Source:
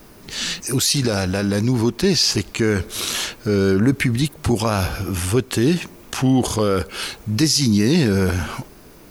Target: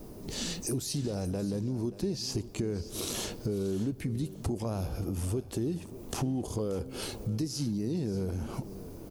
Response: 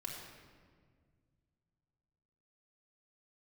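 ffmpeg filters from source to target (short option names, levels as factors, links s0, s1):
-filter_complex "[0:a]firequalizer=gain_entry='entry(460,0);entry(1500,-16);entry(5300,-9);entry(8500,-7)':delay=0.05:min_phase=1,acompressor=threshold=0.0282:ratio=6,aecho=1:1:581|1162:0.158|0.0349,asplit=2[s0][s1];[1:a]atrim=start_sample=2205[s2];[s1][s2]afir=irnorm=-1:irlink=0,volume=0.126[s3];[s0][s3]amix=inputs=2:normalize=0"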